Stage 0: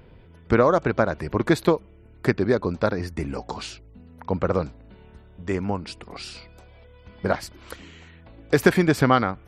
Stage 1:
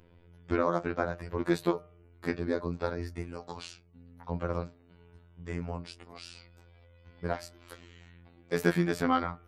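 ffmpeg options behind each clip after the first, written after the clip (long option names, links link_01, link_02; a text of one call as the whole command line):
ffmpeg -i in.wav -af "flanger=delay=8.5:depth=4.1:regen=-56:speed=0.65:shape=sinusoidal,afftfilt=real='hypot(re,im)*cos(PI*b)':imag='0':win_size=2048:overlap=0.75,bandreject=frequency=151.9:width_type=h:width=4,bandreject=frequency=303.8:width_type=h:width=4,bandreject=frequency=455.7:width_type=h:width=4,bandreject=frequency=607.6:width_type=h:width=4,bandreject=frequency=759.5:width_type=h:width=4,bandreject=frequency=911.4:width_type=h:width=4,bandreject=frequency=1063.3:width_type=h:width=4,bandreject=frequency=1215.2:width_type=h:width=4,bandreject=frequency=1367.1:width_type=h:width=4,bandreject=frequency=1519:width_type=h:width=4,bandreject=frequency=1670.9:width_type=h:width=4,bandreject=frequency=1822.8:width_type=h:width=4,volume=-2dB" out.wav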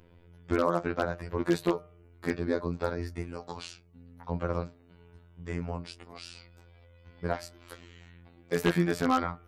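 ffmpeg -i in.wav -af "aeval=exprs='0.2*(abs(mod(val(0)/0.2+3,4)-2)-1)':channel_layout=same,volume=1.5dB" out.wav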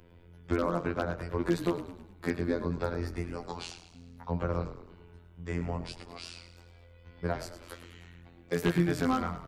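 ffmpeg -i in.wav -filter_complex "[0:a]acrossover=split=250[link_01][link_02];[link_02]acompressor=threshold=-32dB:ratio=2[link_03];[link_01][link_03]amix=inputs=2:normalize=0,asplit=2[link_04][link_05];[link_05]asplit=5[link_06][link_07][link_08][link_09][link_10];[link_06]adelay=105,afreqshift=-37,volume=-12dB[link_11];[link_07]adelay=210,afreqshift=-74,volume=-17.7dB[link_12];[link_08]adelay=315,afreqshift=-111,volume=-23.4dB[link_13];[link_09]adelay=420,afreqshift=-148,volume=-29dB[link_14];[link_10]adelay=525,afreqshift=-185,volume=-34.7dB[link_15];[link_11][link_12][link_13][link_14][link_15]amix=inputs=5:normalize=0[link_16];[link_04][link_16]amix=inputs=2:normalize=0,volume=1dB" out.wav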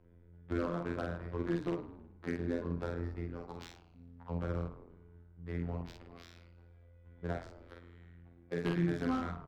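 ffmpeg -i in.wav -filter_complex "[0:a]adynamicsmooth=sensitivity=4:basefreq=1500,asplit=2[link_01][link_02];[link_02]adelay=47,volume=-3dB[link_03];[link_01][link_03]amix=inputs=2:normalize=0,volume=-7.5dB" out.wav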